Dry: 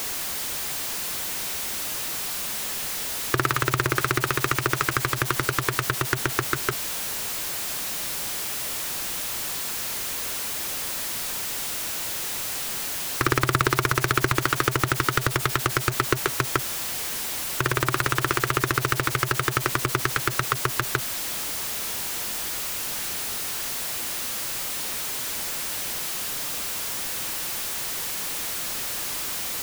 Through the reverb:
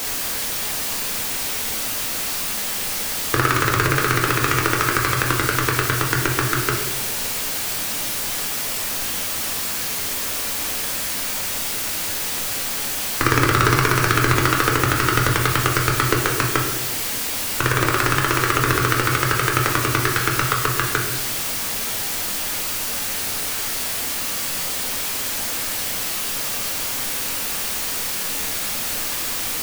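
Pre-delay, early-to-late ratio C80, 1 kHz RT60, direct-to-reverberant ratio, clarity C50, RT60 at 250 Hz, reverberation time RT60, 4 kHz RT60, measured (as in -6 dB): 4 ms, 7.5 dB, 0.85 s, -1.0 dB, 4.5 dB, 1.5 s, 1.0 s, 0.70 s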